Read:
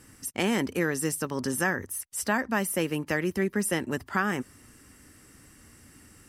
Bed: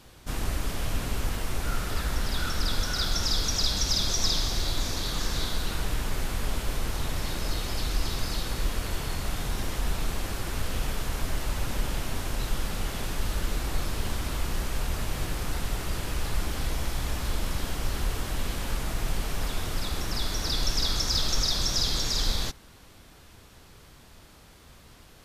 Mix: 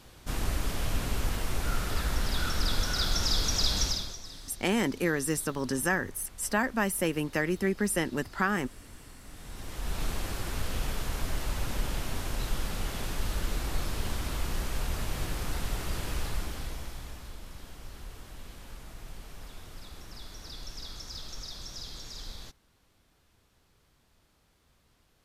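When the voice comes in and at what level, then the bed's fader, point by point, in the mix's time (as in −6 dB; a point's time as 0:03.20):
4.25 s, −1.0 dB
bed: 0:03.84 −1 dB
0:04.26 −20 dB
0:09.21 −20 dB
0:10.02 −2.5 dB
0:16.18 −2.5 dB
0:17.37 −15.5 dB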